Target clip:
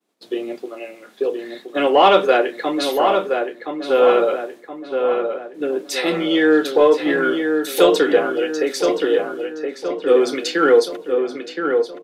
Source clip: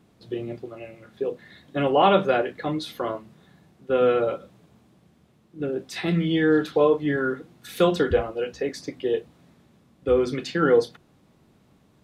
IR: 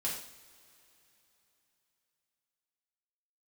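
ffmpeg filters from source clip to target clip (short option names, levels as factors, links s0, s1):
-filter_complex "[0:a]highpass=f=280:w=0.5412,highpass=f=280:w=1.3066,agate=range=0.0224:threshold=0.00251:ratio=3:detection=peak,highshelf=f=4300:g=7.5,asplit=2[s0][s1];[s1]asoftclip=type=tanh:threshold=0.178,volume=0.631[s2];[s0][s2]amix=inputs=2:normalize=0,asplit=2[s3][s4];[s4]adelay=1021,lowpass=f=2300:p=1,volume=0.562,asplit=2[s5][s6];[s6]adelay=1021,lowpass=f=2300:p=1,volume=0.51,asplit=2[s7][s8];[s8]adelay=1021,lowpass=f=2300:p=1,volume=0.51,asplit=2[s9][s10];[s10]adelay=1021,lowpass=f=2300:p=1,volume=0.51,asplit=2[s11][s12];[s12]adelay=1021,lowpass=f=2300:p=1,volume=0.51,asplit=2[s13][s14];[s14]adelay=1021,lowpass=f=2300:p=1,volume=0.51[s15];[s3][s5][s7][s9][s11][s13][s15]amix=inputs=7:normalize=0,volume=1.33"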